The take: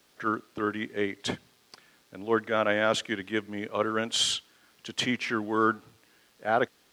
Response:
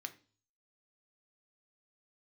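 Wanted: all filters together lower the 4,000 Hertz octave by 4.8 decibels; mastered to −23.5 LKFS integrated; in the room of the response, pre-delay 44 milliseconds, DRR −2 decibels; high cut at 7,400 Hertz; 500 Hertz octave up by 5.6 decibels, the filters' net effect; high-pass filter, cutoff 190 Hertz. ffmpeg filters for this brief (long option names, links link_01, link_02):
-filter_complex "[0:a]highpass=190,lowpass=7400,equalizer=frequency=500:width_type=o:gain=7,equalizer=frequency=4000:width_type=o:gain=-6.5,asplit=2[link_01][link_02];[1:a]atrim=start_sample=2205,adelay=44[link_03];[link_02][link_03]afir=irnorm=-1:irlink=0,volume=4.5dB[link_04];[link_01][link_04]amix=inputs=2:normalize=0,volume=0.5dB"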